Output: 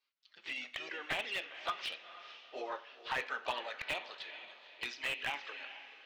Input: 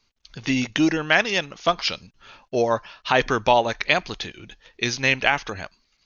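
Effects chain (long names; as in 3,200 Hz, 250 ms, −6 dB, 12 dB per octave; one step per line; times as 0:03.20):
high-pass filter 240 Hz 24 dB per octave
first difference
pitch-shifted copies added +3 semitones −8 dB
flanger swept by the level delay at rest 7.4 ms, full sweep at −26 dBFS
high-frequency loss of the air 440 metres
feedback delay with all-pass diffusion 469 ms, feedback 41%, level −14 dB
convolution reverb, pre-delay 3 ms, DRR 10 dB
slew-rate limiting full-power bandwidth 34 Hz
level +5 dB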